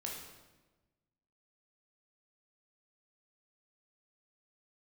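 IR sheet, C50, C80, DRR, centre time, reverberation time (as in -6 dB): 2.5 dB, 5.0 dB, -2.0 dB, 55 ms, 1.2 s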